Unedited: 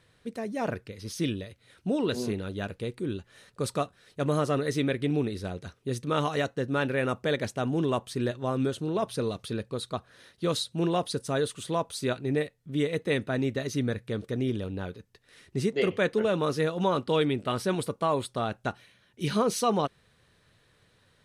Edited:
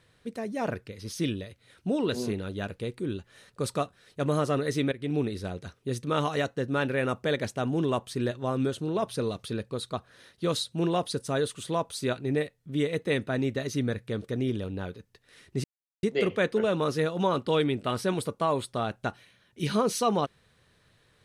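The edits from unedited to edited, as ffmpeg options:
-filter_complex "[0:a]asplit=3[a][b][c];[a]atrim=end=4.92,asetpts=PTS-STARTPTS,afade=t=out:st=4.916:d=0.004:c=hsin:silence=0.199526[d];[b]atrim=start=4.92:end=15.64,asetpts=PTS-STARTPTS,afade=t=in:d=0.27:silence=0.199526,afade=t=out:st=10.716:d=0.004:c=hsin,apad=pad_dur=0.39[e];[c]atrim=start=15.64,asetpts=PTS-STARTPTS,afade=t=in:d=0.004:c=hsin[f];[d][e][f]concat=n=3:v=0:a=1"

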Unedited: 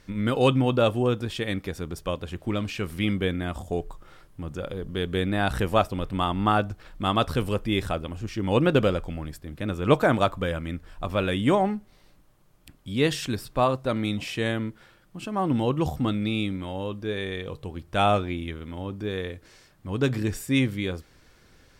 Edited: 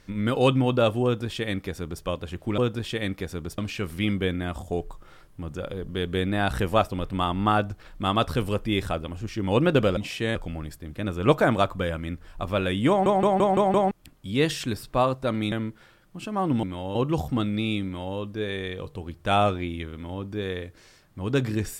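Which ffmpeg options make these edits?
-filter_complex "[0:a]asplit=14[a][b][c][d][e][f][g][h][i][j][k][l][m][n];[a]atrim=end=2.582[o];[b]atrim=start=1.038:end=2.042[p];[c]atrim=start=2.578:end=8.972[q];[d]atrim=start=14.138:end=14.522[r];[e]atrim=start=8.968:end=11.682[s];[f]atrim=start=11.508:end=11.682[t];[g]atrim=start=11.508:end=11.682[u];[h]atrim=start=11.508:end=11.682[v];[i]atrim=start=11.508:end=11.682[w];[j]atrim=start=11.508:end=11.682[x];[k]atrim=start=12.528:end=14.142[y];[l]atrim=start=14.518:end=15.632[z];[m]atrim=start=16.528:end=16.852[aa];[n]atrim=start=15.628[ab];[o][p]acrossfade=d=0.004:c1=hsin:c2=hsin[ac];[ac][q]acrossfade=d=0.004:c1=hsin:c2=hsin[ad];[ad][r]acrossfade=d=0.004:c1=hsin:c2=hsin[ae];[ae][s]acrossfade=d=0.004:c1=hsin:c2=hsin[af];[af][t]acrossfade=d=0.004:c1=hsin:c2=hsin[ag];[ag][u]acrossfade=d=0.004:c1=hsin:c2=hsin[ah];[ah][v]acrossfade=d=0.004:c1=hsin:c2=hsin[ai];[ai][w]acrossfade=d=0.004:c1=hsin:c2=hsin[aj];[aj][x]acrossfade=d=0.004:c1=hsin:c2=hsin[ak];[ak][y]acrossfade=d=0.004:c1=hsin:c2=hsin[al];[al][z]acrossfade=d=0.004:c1=hsin:c2=hsin[am];[am][aa]acrossfade=d=0.004:c1=hsin:c2=hsin[an];[an][ab]acrossfade=d=0.004:c1=hsin:c2=hsin"

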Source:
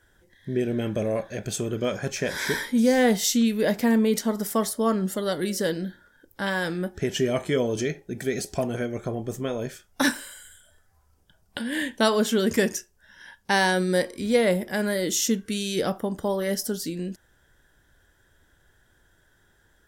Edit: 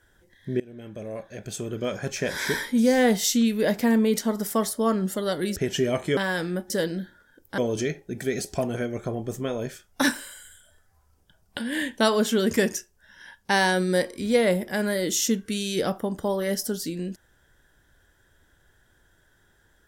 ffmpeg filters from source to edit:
-filter_complex "[0:a]asplit=6[a][b][c][d][e][f];[a]atrim=end=0.6,asetpts=PTS-STARTPTS,afade=t=out:st=0.596:d=0.004:c=hsin:silence=0.0794328[g];[b]atrim=start=0.6:end=5.562,asetpts=PTS-STARTPTS,afade=t=in:d=1.67:silence=0.0794328[h];[c]atrim=start=6.968:end=7.582[i];[d]atrim=start=6.438:end=6.972[j];[e]atrim=start=5.558:end=6.442[k];[f]atrim=start=7.578[l];[g][h]concat=n=2:v=0:a=1[m];[m][i]acrossfade=d=0.004:c1=hsin:c2=hsin[n];[n][j]acrossfade=d=0.004:c1=hsin:c2=hsin[o];[o][k]acrossfade=d=0.004:c1=hsin:c2=hsin[p];[p][l]acrossfade=d=0.004:c1=hsin:c2=hsin"

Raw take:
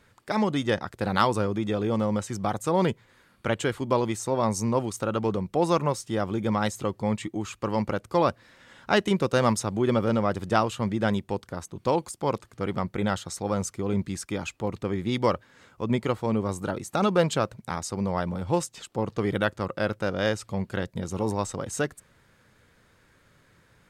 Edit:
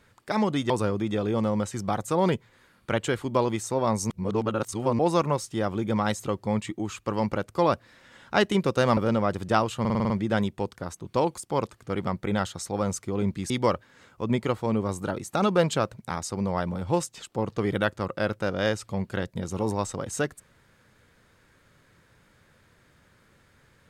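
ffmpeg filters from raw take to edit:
-filter_complex "[0:a]asplit=12[a][b][c][d][e][f][g][h][i][j][k][l];[a]atrim=end=0.702[m];[b]atrim=start=1.258:end=4.662[n];[c]atrim=start=4.658:end=5.552,asetpts=PTS-STARTPTS,areverse[o];[d]atrim=start=5.548:end=9.532[p];[e]atrim=start=9.978:end=10.862[q];[f]atrim=start=10.808:end=10.862[r];[g]atrim=start=10.808:end=10.862[s];[h]atrim=start=10.808:end=10.862[t];[i]atrim=start=10.808:end=10.862[u];[j]atrim=start=10.808:end=10.862[v];[k]atrim=start=10.808:end=14.212[w];[l]atrim=start=15.098[x];[m][n]acrossfade=d=0.004:c1=hsin:c2=hsin[y];[y][o]acrossfade=d=0.004:c1=hsin:c2=hsin[z];[z][p]acrossfade=d=0.004:c1=hsin:c2=hsin[aa];[aa][q]acrossfade=d=0.004:c1=hsin:c2=hsin[ab];[ab][r]acrossfade=d=0.004:c1=hsin:c2=hsin[ac];[ac][s]acrossfade=d=0.004:c1=hsin:c2=hsin[ad];[ad][t]acrossfade=d=0.004:c1=hsin:c2=hsin[ae];[ae][u]acrossfade=d=0.004:c1=hsin:c2=hsin[af];[af][v]acrossfade=d=0.004:c1=hsin:c2=hsin[ag];[ag][w]acrossfade=d=0.004:c1=hsin:c2=hsin[ah];[ah][x]acrossfade=d=0.004:c1=hsin:c2=hsin"

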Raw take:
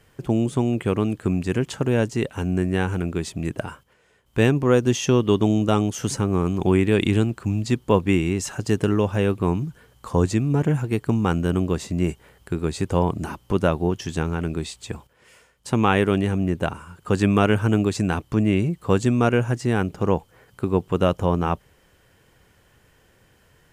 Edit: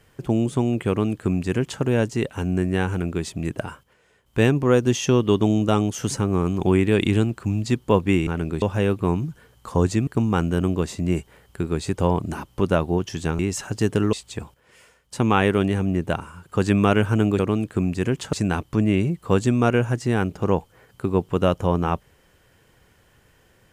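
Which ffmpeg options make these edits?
-filter_complex "[0:a]asplit=8[a][b][c][d][e][f][g][h];[a]atrim=end=8.272[i];[b]atrim=start=14.308:end=14.662[j];[c]atrim=start=9.008:end=10.462[k];[d]atrim=start=10.988:end=14.312[l];[e]atrim=start=8.268:end=9.012[m];[f]atrim=start=14.658:end=17.922[n];[g]atrim=start=0.878:end=1.822[o];[h]atrim=start=17.918[p];[i][j]acrossfade=d=0.004:c1=hsin:c2=hsin[q];[q][k]acrossfade=d=0.004:c1=hsin:c2=hsin[r];[r][l]acrossfade=d=0.004:c1=hsin:c2=hsin[s];[s][m]acrossfade=d=0.004:c1=hsin:c2=hsin[t];[t][n]acrossfade=d=0.004:c1=hsin:c2=hsin[u];[u][o]acrossfade=d=0.004:c1=hsin:c2=hsin[v];[v][p]acrossfade=d=0.004:c1=hsin:c2=hsin"

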